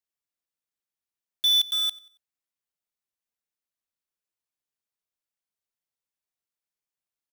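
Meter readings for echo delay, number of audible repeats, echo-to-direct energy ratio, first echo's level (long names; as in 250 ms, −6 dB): 92 ms, 2, −21.5 dB, −22.0 dB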